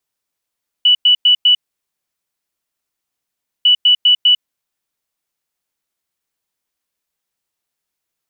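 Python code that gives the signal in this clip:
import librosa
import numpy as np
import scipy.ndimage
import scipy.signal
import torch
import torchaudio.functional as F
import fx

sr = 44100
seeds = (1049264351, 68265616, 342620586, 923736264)

y = fx.beep_pattern(sr, wave='sine', hz=2960.0, on_s=0.1, off_s=0.1, beeps=4, pause_s=2.1, groups=2, level_db=-6.5)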